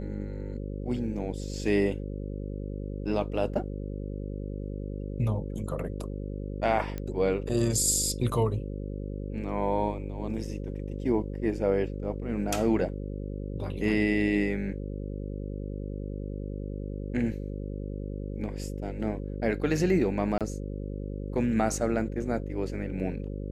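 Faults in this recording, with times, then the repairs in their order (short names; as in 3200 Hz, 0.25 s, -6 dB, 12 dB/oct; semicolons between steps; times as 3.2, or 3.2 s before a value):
buzz 50 Hz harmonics 11 -35 dBFS
6.98 pop -21 dBFS
20.38–20.41 gap 27 ms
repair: de-click; de-hum 50 Hz, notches 11; interpolate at 20.38, 27 ms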